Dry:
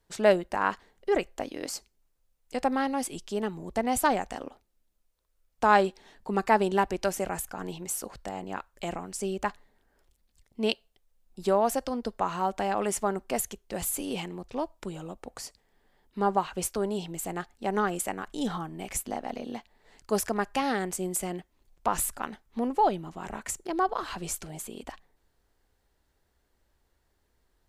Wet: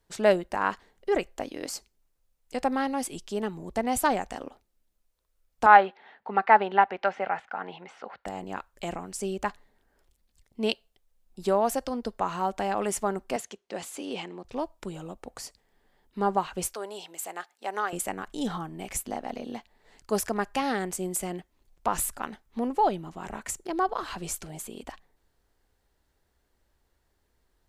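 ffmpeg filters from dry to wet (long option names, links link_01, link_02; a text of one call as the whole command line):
ffmpeg -i in.wav -filter_complex "[0:a]asettb=1/sr,asplit=3[link_01][link_02][link_03];[link_01]atrim=end=5.664[link_04];[link_02]atrim=start=5.66:end=8.26,asetpts=PTS-STARTPTS,afade=type=in:duration=0.004:curve=qsin,afade=type=out:start_time=2.596:duration=0.004:curve=qsin,highpass=290,equalizer=frequency=330:width_type=q:width=4:gain=-9,equalizer=frequency=800:width_type=q:width=4:gain=8,equalizer=frequency=1400:width_type=q:width=4:gain=7,equalizer=frequency=2000:width_type=q:width=4:gain=6,lowpass=frequency=3400:width=0.5412,lowpass=frequency=3400:width=1.3066[link_05];[link_03]atrim=start=8.256[link_06];[link_04][link_05]acrossfade=duration=0.004:curve1=hsin:curve2=qsin[link_07];[link_07][link_06]acrossfade=duration=0.004:curve1=qsin:curve2=hsin,asettb=1/sr,asplit=3[link_08][link_09][link_10];[link_08]atrim=end=13.364[link_11];[link_09]atrim=start=13.36:end=14.45,asetpts=PTS-STARTPTS,afade=type=in:duration=0.004:curve=qsin,afade=type=out:start_time=1.086:duration=0.004:curve=qsin,highpass=250,lowpass=5700[link_12];[link_10]atrim=start=14.446[link_13];[link_11][link_12]acrossfade=duration=0.004:curve1=hsin:curve2=qsin[link_14];[link_14][link_13]acrossfade=duration=0.004:curve1=qsin:curve2=hsin,asettb=1/sr,asplit=3[link_15][link_16][link_17];[link_15]atrim=end=16.744[link_18];[link_16]atrim=start=16.74:end=17.93,asetpts=PTS-STARTPTS,afade=type=in:duration=0.004:curve=qsin,afade=type=out:start_time=1.186:duration=0.004:curve=qsin,highpass=610[link_19];[link_17]atrim=start=17.926[link_20];[link_18][link_19]acrossfade=duration=0.004:curve1=hsin:curve2=qsin[link_21];[link_21][link_20]acrossfade=duration=0.004:curve1=qsin:curve2=hsin" out.wav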